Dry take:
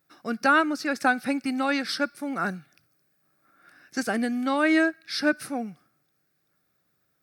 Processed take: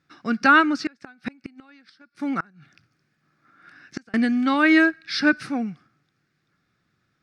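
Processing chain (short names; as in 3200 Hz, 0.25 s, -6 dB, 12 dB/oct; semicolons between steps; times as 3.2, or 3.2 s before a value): bell 590 Hz -10 dB 1.3 oct; 0.7–4.14 flipped gate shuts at -22 dBFS, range -31 dB; air absorption 130 m; gain +8.5 dB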